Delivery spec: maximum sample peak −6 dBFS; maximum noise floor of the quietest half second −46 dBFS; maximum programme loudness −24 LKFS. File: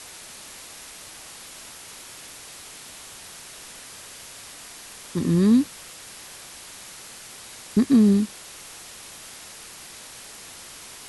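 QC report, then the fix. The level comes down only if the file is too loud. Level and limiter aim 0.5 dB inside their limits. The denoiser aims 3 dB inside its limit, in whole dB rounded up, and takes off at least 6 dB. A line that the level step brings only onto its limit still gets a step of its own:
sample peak −8.5 dBFS: in spec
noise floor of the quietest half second −42 dBFS: out of spec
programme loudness −20.5 LKFS: out of spec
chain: broadband denoise 6 dB, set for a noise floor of −42 dBFS
level −4 dB

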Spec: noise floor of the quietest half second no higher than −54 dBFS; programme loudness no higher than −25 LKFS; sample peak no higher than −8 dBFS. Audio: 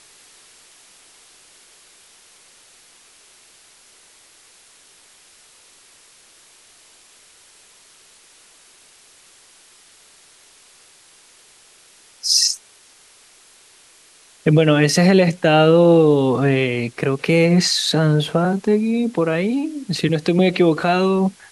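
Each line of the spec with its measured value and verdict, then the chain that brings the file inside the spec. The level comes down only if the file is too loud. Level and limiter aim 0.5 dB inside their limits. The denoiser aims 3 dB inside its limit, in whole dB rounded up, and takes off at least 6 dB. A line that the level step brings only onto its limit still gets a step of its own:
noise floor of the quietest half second −50 dBFS: out of spec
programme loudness −16.5 LKFS: out of spec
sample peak −4.0 dBFS: out of spec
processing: level −9 dB

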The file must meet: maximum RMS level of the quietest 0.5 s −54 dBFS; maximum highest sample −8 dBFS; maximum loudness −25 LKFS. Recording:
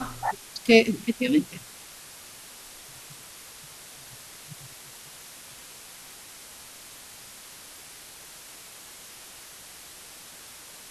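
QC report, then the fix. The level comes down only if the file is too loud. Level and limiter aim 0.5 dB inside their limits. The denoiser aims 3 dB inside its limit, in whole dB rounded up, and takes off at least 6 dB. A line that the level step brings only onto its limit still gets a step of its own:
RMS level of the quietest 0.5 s −46 dBFS: out of spec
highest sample −5.0 dBFS: out of spec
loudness −23.5 LKFS: out of spec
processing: broadband denoise 9 dB, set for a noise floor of −46 dBFS
level −2 dB
brickwall limiter −8.5 dBFS

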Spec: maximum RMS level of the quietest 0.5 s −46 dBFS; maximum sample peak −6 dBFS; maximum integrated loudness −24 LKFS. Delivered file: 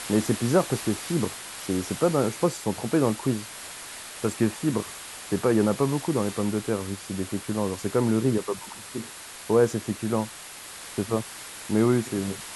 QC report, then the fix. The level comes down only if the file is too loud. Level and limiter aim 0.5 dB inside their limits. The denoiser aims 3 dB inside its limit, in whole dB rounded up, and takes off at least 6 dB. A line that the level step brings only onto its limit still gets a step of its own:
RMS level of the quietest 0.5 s −42 dBFS: out of spec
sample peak −7.5 dBFS: in spec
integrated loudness −26.5 LKFS: in spec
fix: broadband denoise 7 dB, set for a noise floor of −42 dBFS

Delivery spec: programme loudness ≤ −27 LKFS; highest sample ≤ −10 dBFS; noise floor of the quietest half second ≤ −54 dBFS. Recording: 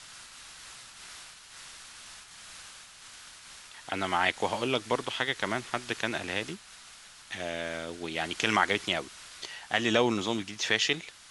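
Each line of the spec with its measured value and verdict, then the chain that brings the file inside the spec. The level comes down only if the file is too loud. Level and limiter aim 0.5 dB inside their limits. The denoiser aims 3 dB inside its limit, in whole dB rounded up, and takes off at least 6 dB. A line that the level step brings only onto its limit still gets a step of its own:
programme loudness −30.0 LKFS: in spec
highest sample −8.5 dBFS: out of spec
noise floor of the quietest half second −51 dBFS: out of spec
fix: broadband denoise 6 dB, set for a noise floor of −51 dBFS
brickwall limiter −10.5 dBFS

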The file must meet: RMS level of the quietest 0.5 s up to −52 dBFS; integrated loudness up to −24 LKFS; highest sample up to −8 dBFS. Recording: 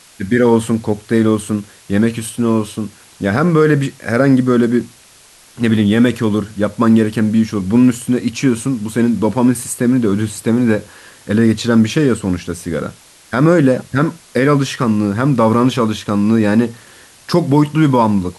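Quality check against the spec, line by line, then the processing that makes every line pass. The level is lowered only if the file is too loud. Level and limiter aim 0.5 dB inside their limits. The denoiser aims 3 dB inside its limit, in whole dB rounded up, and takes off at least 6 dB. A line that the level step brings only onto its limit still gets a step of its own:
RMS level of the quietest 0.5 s −45 dBFS: out of spec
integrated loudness −15.0 LKFS: out of spec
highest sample −2.0 dBFS: out of spec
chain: level −9.5 dB

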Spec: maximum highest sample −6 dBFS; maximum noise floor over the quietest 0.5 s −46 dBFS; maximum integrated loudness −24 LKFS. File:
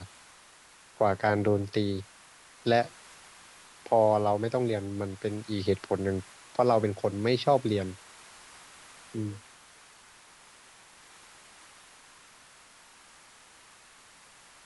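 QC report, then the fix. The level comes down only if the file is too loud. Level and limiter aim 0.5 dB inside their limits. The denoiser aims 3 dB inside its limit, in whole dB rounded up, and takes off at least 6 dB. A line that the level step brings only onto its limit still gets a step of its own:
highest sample −10.5 dBFS: in spec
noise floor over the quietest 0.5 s −56 dBFS: in spec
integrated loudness −28.5 LKFS: in spec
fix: no processing needed

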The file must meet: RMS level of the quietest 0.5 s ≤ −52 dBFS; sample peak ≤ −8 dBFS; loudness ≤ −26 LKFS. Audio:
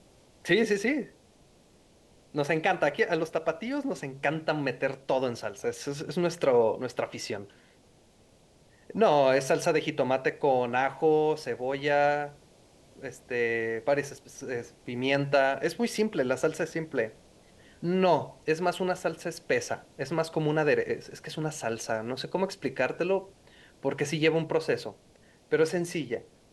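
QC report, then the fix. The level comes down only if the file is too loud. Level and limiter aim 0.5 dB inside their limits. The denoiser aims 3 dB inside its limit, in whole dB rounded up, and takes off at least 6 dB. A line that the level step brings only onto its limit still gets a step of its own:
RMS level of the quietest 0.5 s −60 dBFS: in spec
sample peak −10.5 dBFS: in spec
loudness −28.5 LKFS: in spec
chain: no processing needed

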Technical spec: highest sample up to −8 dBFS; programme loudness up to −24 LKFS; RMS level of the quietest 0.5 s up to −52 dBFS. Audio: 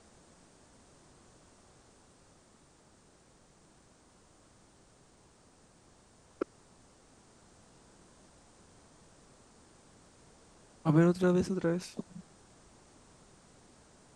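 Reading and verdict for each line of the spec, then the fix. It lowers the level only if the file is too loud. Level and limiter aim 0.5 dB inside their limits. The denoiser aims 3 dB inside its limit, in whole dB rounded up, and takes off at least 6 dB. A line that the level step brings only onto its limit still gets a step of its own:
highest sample −14.5 dBFS: in spec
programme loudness −30.5 LKFS: in spec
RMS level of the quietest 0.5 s −63 dBFS: in spec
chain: no processing needed

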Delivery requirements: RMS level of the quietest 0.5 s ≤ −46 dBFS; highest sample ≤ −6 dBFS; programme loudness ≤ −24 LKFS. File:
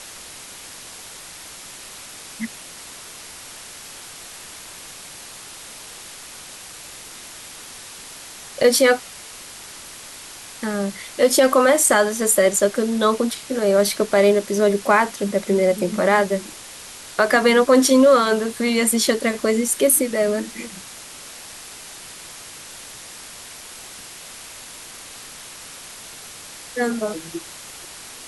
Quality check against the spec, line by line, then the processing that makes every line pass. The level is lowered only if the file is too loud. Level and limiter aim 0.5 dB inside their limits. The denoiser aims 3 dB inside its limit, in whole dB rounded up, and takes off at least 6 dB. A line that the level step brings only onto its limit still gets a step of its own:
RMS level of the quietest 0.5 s −39 dBFS: out of spec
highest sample −5.0 dBFS: out of spec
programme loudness −18.0 LKFS: out of spec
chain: broadband denoise 6 dB, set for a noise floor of −39 dBFS
level −6.5 dB

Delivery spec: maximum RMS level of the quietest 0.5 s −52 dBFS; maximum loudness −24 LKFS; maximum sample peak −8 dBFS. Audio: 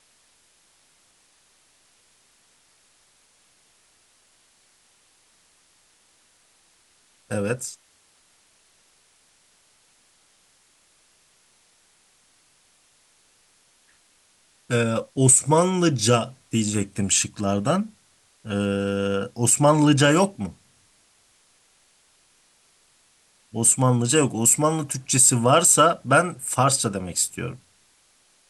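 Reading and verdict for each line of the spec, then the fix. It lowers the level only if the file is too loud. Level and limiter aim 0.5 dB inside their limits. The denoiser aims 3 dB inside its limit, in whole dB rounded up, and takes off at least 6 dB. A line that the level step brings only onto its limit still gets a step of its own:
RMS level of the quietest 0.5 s −61 dBFS: in spec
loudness −20.0 LKFS: out of spec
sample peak −5.5 dBFS: out of spec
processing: level −4.5 dB

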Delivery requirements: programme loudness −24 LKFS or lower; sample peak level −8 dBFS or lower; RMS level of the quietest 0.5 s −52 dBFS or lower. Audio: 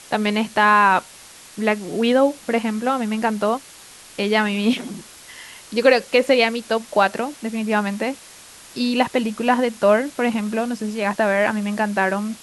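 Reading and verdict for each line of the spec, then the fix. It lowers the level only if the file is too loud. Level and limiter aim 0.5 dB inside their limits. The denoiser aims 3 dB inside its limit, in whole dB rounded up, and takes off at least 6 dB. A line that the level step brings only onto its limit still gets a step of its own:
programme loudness −20.0 LKFS: out of spec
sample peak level −2.5 dBFS: out of spec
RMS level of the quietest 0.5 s −43 dBFS: out of spec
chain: broadband denoise 8 dB, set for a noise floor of −43 dBFS
level −4.5 dB
brickwall limiter −8.5 dBFS

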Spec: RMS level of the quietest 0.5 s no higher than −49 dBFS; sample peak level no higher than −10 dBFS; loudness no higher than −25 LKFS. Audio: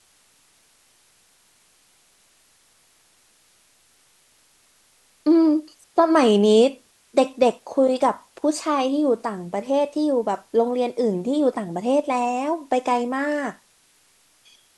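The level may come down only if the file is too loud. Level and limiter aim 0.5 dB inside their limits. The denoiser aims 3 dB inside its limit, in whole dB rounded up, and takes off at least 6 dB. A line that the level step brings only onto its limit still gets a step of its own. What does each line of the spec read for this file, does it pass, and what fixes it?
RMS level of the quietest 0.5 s −60 dBFS: in spec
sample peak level −5.0 dBFS: out of spec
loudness −21.5 LKFS: out of spec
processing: level −4 dB
brickwall limiter −10.5 dBFS

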